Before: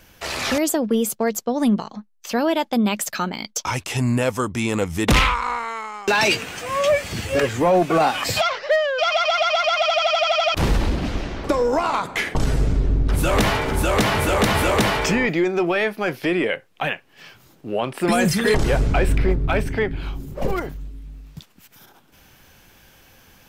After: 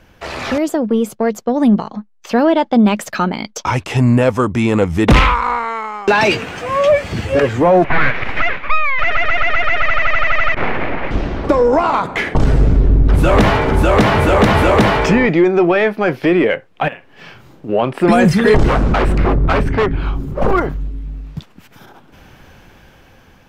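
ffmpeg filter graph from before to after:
-filter_complex "[0:a]asettb=1/sr,asplit=3[a][b][c];[a]atrim=end=2.444[d];[b]atrim=start=2.44:end=2.86,asetpts=PTS-STARTPTS,afade=t=in:d=0.004:c=qsin,afade=t=out:st=0.416:d=0.004:c=qsin,lowpass=7k,bandreject=f=2.5k:w=12[e];[c]atrim=start=2.856[f];[d][e]acrossfade=d=0.004:c1=hsin:c2=qsin[g];[g][f]acrossfade=d=0.004:c1=qsin:c2=hsin,asettb=1/sr,asplit=3[h][i][j];[h]atrim=end=7.844[k];[i]atrim=start=7.84:end=11.11,asetpts=PTS-STARTPTS,afade=t=in:d=0.004:c=qsin,afade=t=out:st=3.266:d=0.004:c=qsin,lowshelf=f=220:t=q:w=1.5:g=-10.5,aeval=exprs='abs(val(0))':c=same,lowpass=f=2.2k:t=q:w=2.9[l];[j]atrim=start=11.106[m];[k][l]acrossfade=d=0.004:c1=hsin:c2=qsin[n];[n][m]acrossfade=d=0.004:c1=qsin:c2=hsin,asettb=1/sr,asplit=3[o][p][q];[o]atrim=end=16.884[r];[p]atrim=start=16.88:end=17.69,asetpts=PTS-STARTPTS,afade=t=in:d=0.004:c=qsin,afade=t=out:st=0.806:d=0.004:c=qsin,acompressor=threshold=-35dB:ratio=4:attack=3.2:release=140:knee=1:detection=peak,acrusher=bits=7:mode=log:mix=0:aa=0.000001,asplit=2[s][t];[t]adelay=42,volume=-5dB[u];[s][u]amix=inputs=2:normalize=0,atrim=end_sample=35721[v];[q]atrim=start=17.686[w];[r][v]acrossfade=d=0.004:c1=hsin:c2=qsin[x];[x][w]acrossfade=d=0.004:c1=qsin:c2=hsin,asettb=1/sr,asplit=3[y][z][aa];[y]atrim=end=18.684[ab];[z]atrim=start=18.68:end=20.77,asetpts=PTS-STARTPTS,afade=t=in:d=0.004:c=qsin,afade=t=out:st=2.086:d=0.004:c=qsin,aeval=exprs='0.15*(abs(mod(val(0)/0.15+3,4)-2)-1)':c=same,equalizer=f=1.2k:t=o:w=0.62:g=5.5[ac];[aa]atrim=start=20.766[ad];[ab][ac]acrossfade=d=0.004:c1=hsin:c2=qsin[ae];[ae][ad]acrossfade=d=0.004:c1=qsin:c2=hsin,acontrast=79,lowpass=f=1.6k:p=1,dynaudnorm=f=450:g=7:m=9dB,volume=-2dB"

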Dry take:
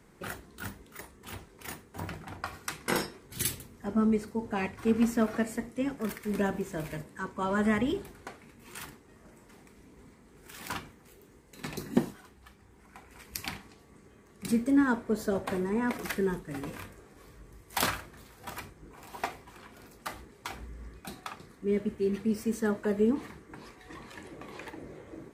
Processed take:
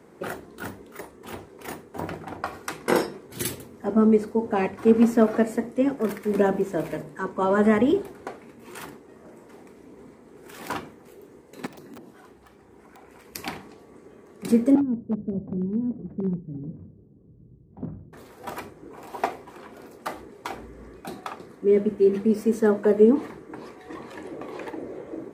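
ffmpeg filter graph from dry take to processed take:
-filter_complex "[0:a]asettb=1/sr,asplit=3[a][b][c];[a]atrim=end=11.664[d];[b]atrim=start=11.66:end=13.35,asetpts=PTS-STARTPTS,afade=t=in:d=0.004:c=qsin,afade=t=out:st=1.686:d=0.004:c=qsin,acompressor=threshold=-52dB:ratio=3:attack=3.2:release=140:knee=1:detection=peak,aeval=exprs='(mod(133*val(0)+1,2)-1)/133':c=same[e];[c]atrim=start=13.346[f];[d][e]acrossfade=d=0.004:c1=hsin:c2=qsin[g];[g][f]acrossfade=d=0.004:c1=qsin:c2=hsin,asettb=1/sr,asplit=3[h][i][j];[h]atrim=end=14.754[k];[i]atrim=start=14.75:end=18.13,asetpts=PTS-STARTPTS,afade=t=in:d=0.004:c=qsin,afade=t=out:st=3.376:d=0.004:c=qsin,lowpass=f=160:t=q:w=1.7,aeval=exprs='0.0501*(abs(mod(val(0)/0.0501+3,4)-2)-1)':c=same[l];[j]atrim=start=18.126[m];[k][l]acrossfade=d=0.004:c1=hsin:c2=qsin[n];[n][m]acrossfade=d=0.004:c1=qsin:c2=hsin,highpass=67,equalizer=f=460:t=o:w=2.7:g=11.5,bandreject=f=50:t=h:w=6,bandreject=f=100:t=h:w=6,bandreject=f=150:t=h:w=6,bandreject=f=200:t=h:w=6"

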